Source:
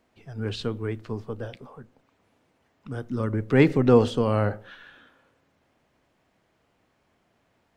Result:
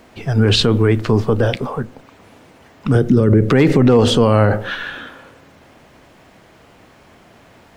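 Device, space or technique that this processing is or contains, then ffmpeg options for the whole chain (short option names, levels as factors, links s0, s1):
loud club master: -filter_complex "[0:a]asettb=1/sr,asplit=3[s0][s1][s2];[s0]atrim=end=2.954[s3];[s1]atrim=start=2.95:end=3.49,asetpts=PTS-STARTPTS,afade=t=in:d=0.004:c=qsin,afade=t=out:st=0.536:d=0.004:c=qsin,equalizer=f=160:t=o:w=0.67:g=11,equalizer=f=400:t=o:w=0.67:g=9,equalizer=f=1000:t=o:w=0.67:g=-7[s4];[s2]atrim=start=3.486[s5];[s3][s4]acrossfade=d=0.004:c1=hsin:c2=qsin[s6];[s6][s5]acrossfade=d=0.004:c1=qsin:c2=hsin,acompressor=threshold=0.0447:ratio=1.5,asoftclip=type=hard:threshold=0.211,alimiter=level_in=16.8:limit=0.891:release=50:level=0:latency=1,volume=0.708"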